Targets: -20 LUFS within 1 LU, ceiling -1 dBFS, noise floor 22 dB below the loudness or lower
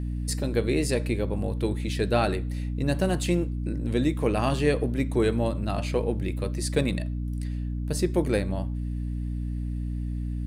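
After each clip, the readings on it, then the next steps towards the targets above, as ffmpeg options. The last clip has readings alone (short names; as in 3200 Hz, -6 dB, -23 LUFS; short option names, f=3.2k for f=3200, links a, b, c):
hum 60 Hz; harmonics up to 300 Hz; hum level -27 dBFS; loudness -27.5 LUFS; peak -10.5 dBFS; loudness target -20.0 LUFS
-> -af "bandreject=f=60:t=h:w=6,bandreject=f=120:t=h:w=6,bandreject=f=180:t=h:w=6,bandreject=f=240:t=h:w=6,bandreject=f=300:t=h:w=6"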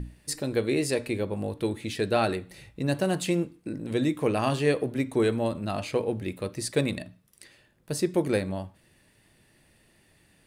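hum none; loudness -28.5 LUFS; peak -11.5 dBFS; loudness target -20.0 LUFS
-> -af "volume=8.5dB"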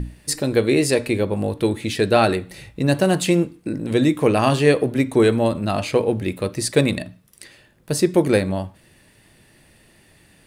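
loudness -20.0 LUFS; peak -3.0 dBFS; noise floor -55 dBFS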